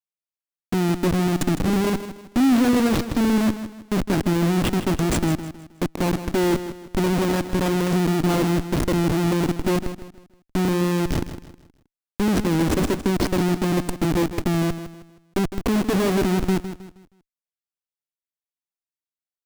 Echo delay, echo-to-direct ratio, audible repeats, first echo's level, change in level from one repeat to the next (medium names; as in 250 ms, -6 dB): 158 ms, -11.0 dB, 3, -11.5 dB, -9.0 dB